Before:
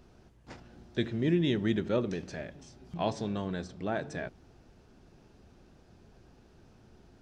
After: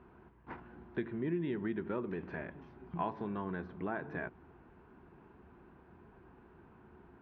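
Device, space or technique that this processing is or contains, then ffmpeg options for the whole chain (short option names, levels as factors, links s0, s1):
bass amplifier: -af "acompressor=threshold=0.0158:ratio=3,highpass=60,equalizer=f=110:t=q:w=4:g=-7,equalizer=f=370:t=q:w=4:g=4,equalizer=f=570:t=q:w=4:g=-6,equalizer=f=1000:t=q:w=4:g=10,equalizer=f=1500:t=q:w=4:g=4,lowpass=f=2400:w=0.5412,lowpass=f=2400:w=1.3066"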